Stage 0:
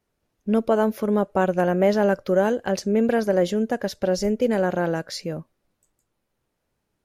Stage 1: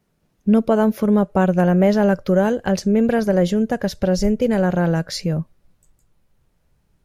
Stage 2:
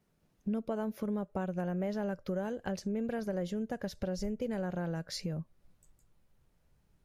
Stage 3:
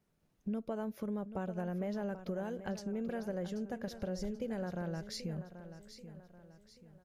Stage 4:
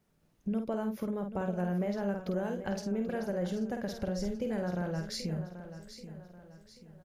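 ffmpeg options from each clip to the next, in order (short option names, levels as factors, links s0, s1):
-filter_complex "[0:a]equalizer=f=170:t=o:w=0.82:g=10.5,asplit=2[s0][s1];[s1]acompressor=threshold=0.0562:ratio=6,volume=0.891[s2];[s0][s2]amix=inputs=2:normalize=0,asubboost=boost=5.5:cutoff=82"
-af "acompressor=threshold=0.0282:ratio=2.5,volume=0.473"
-af "aecho=1:1:784|1568|2352|3136:0.251|0.105|0.0443|0.0186,volume=0.668"
-filter_complex "[0:a]asplit=2[s0][s1];[s1]adelay=50,volume=0.501[s2];[s0][s2]amix=inputs=2:normalize=0,volume=1.58"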